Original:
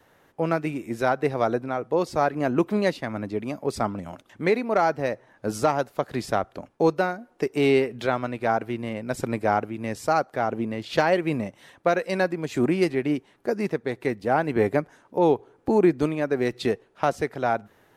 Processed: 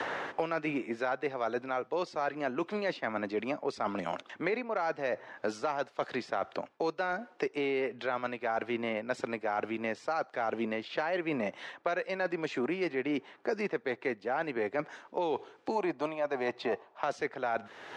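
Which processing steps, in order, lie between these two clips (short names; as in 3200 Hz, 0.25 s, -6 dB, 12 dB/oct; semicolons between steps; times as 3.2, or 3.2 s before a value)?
weighting filter A; spectral gain 15.76–17.01, 560–1200 Hz +10 dB; reverse; compressor 10:1, threshold -35 dBFS, peak gain reduction 20 dB; reverse; air absorption 120 m; three-band squash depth 100%; gain +6 dB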